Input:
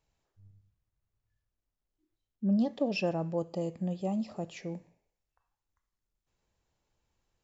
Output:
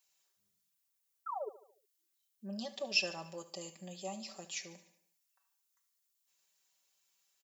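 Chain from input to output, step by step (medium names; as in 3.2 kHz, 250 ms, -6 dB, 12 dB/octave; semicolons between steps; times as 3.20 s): differentiator; painted sound fall, 1.26–1.49 s, 390–1400 Hz -51 dBFS; comb 5.2 ms, depth 79%; feedback delay 73 ms, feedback 51%, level -16 dB; trim +10 dB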